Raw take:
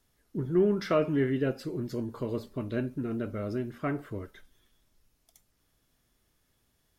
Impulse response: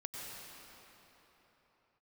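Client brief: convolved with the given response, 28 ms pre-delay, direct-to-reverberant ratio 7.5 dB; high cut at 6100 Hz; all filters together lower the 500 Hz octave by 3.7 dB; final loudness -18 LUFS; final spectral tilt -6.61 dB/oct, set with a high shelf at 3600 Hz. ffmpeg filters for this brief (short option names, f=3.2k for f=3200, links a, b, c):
-filter_complex "[0:a]lowpass=6.1k,equalizer=f=500:t=o:g=-5,highshelf=f=3.6k:g=-7.5,asplit=2[a][b];[1:a]atrim=start_sample=2205,adelay=28[c];[b][c]afir=irnorm=-1:irlink=0,volume=-7.5dB[d];[a][d]amix=inputs=2:normalize=0,volume=14.5dB"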